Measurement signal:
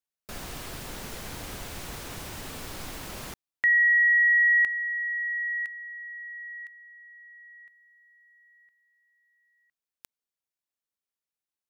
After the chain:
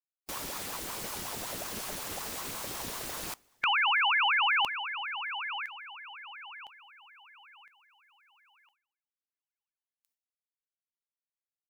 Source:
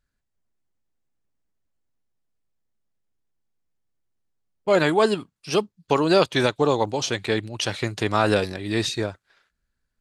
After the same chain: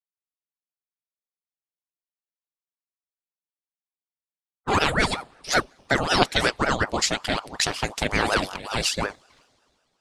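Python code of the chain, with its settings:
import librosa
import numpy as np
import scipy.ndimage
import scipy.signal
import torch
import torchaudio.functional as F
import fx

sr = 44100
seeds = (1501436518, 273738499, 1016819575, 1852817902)

y = fx.high_shelf(x, sr, hz=3900.0, db=7.5)
y = fx.gate_hold(y, sr, open_db=-51.0, close_db=-56.0, hold_ms=23.0, range_db=-35, attack_ms=0.34, release_ms=178.0)
y = fx.rev_double_slope(y, sr, seeds[0], early_s=0.27, late_s=2.9, knee_db=-18, drr_db=19.5)
y = fx.hpss(y, sr, part='percussive', gain_db=8)
y = fx.ring_lfo(y, sr, carrier_hz=640.0, swing_pct=75, hz=5.4)
y = F.gain(torch.from_numpy(y), -4.5).numpy()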